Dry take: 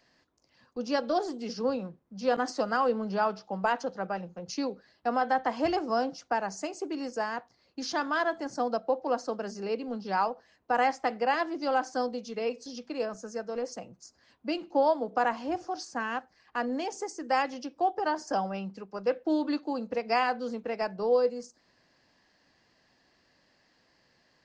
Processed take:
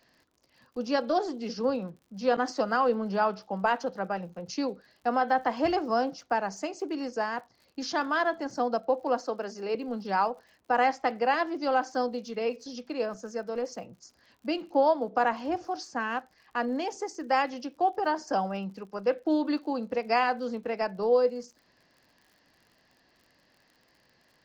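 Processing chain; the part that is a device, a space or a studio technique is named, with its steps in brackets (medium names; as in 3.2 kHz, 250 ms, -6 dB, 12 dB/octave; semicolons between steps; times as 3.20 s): lo-fi chain (low-pass 6.2 kHz 12 dB/octave; wow and flutter 14 cents; crackle 58 per s -50 dBFS); 9.20–9.75 s: high-pass 260 Hz 12 dB/octave; trim +1.5 dB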